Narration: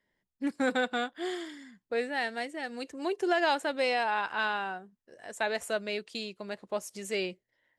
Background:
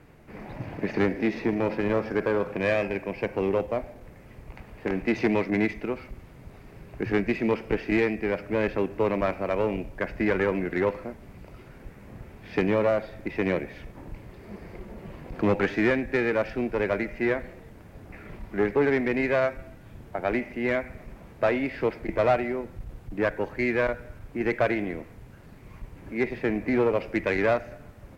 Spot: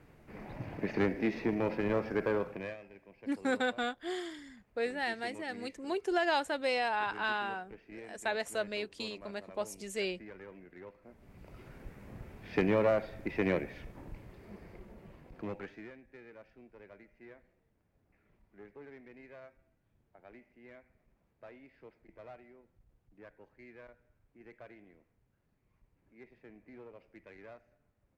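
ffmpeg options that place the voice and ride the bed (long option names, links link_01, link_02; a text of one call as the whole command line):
ffmpeg -i stem1.wav -i stem2.wav -filter_complex "[0:a]adelay=2850,volume=-3dB[link_01];[1:a]volume=14.5dB,afade=type=out:start_time=2.34:duration=0.43:silence=0.112202,afade=type=in:start_time=11.01:duration=0.66:silence=0.0944061,afade=type=out:start_time=13.6:duration=2.31:silence=0.0630957[link_02];[link_01][link_02]amix=inputs=2:normalize=0" out.wav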